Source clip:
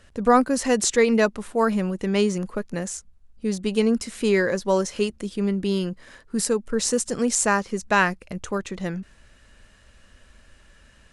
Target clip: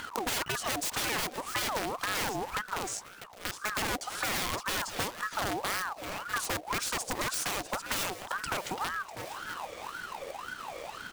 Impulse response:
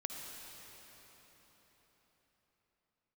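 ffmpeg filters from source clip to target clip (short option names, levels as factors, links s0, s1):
-filter_complex "[0:a]lowpass=9000,asplit=2[s0][s1];[s1]acompressor=mode=upward:threshold=0.0708:ratio=2.5,volume=0.891[s2];[s0][s2]amix=inputs=2:normalize=0,aeval=exprs='(mod(3.98*val(0)+1,2)-1)/3.98':c=same,asplit=2[s3][s4];[s4]aecho=0:1:647|1294|1941:0.141|0.0466|0.0154[s5];[s3][s5]amix=inputs=2:normalize=0,acompressor=threshold=0.0501:ratio=5,asettb=1/sr,asplit=3[s6][s7][s8];[s6]atrim=end=2.884[s9];[s7]atrim=start=2.88:end=3.62,asetpts=PTS-STARTPTS,afade=t=in:d=0.004:c=qsin,afade=t=out:st=0.736:d=0.004:c=qsin,highpass=f=580:w=0.5412,highpass=f=580:w=1.3066[s10];[s8]atrim=start=3.616[s11];[s9][s10]acrossfade=d=0.004:c1=hsin:c2=qsin[s12];[s12][s11]acrossfade=d=0.004:c1=qsin:c2=hsin,aeval=exprs='val(0)+0.00501*(sin(2*PI*60*n/s)+sin(2*PI*2*60*n/s)/2+sin(2*PI*3*60*n/s)/3+sin(2*PI*4*60*n/s)/4+sin(2*PI*5*60*n/s)/5)':c=same,acrusher=bits=3:mode=log:mix=0:aa=0.000001,aeval=exprs='val(0)*sin(2*PI*1000*n/s+1000*0.5/1.9*sin(2*PI*1.9*n/s))':c=same,volume=0.75"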